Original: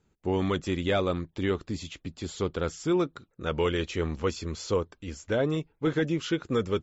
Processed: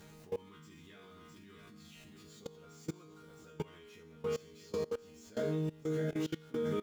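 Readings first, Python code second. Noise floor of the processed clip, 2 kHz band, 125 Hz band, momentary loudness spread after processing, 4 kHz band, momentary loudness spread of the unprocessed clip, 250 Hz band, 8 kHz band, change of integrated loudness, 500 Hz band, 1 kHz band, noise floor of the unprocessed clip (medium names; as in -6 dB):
-56 dBFS, -16.0 dB, -11.0 dB, 20 LU, -15.5 dB, 9 LU, -11.5 dB, no reading, -10.0 dB, -10.5 dB, -16.0 dB, -71 dBFS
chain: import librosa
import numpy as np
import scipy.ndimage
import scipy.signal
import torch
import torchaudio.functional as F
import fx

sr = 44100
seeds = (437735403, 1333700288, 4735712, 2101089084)

y = x + 0.5 * 10.0 ** (-34.0 / 20.0) * np.sign(x)
y = fx.spec_box(y, sr, start_s=0.39, length_s=1.35, low_hz=390.0, high_hz=930.0, gain_db=-13)
y = scipy.signal.sosfilt(scipy.signal.butter(2, 44.0, 'highpass', fs=sr, output='sos'), y)
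y = fx.low_shelf(y, sr, hz=290.0, db=4.5)
y = fx.resonator_bank(y, sr, root=51, chord='sus4', decay_s=0.76)
y = y + 10.0 ** (-7.5 / 20.0) * np.pad(y, (int(661 * sr / 1000.0), 0))[:len(y)]
y = fx.level_steps(y, sr, step_db=22)
y = y * librosa.db_to_amplitude(10.5)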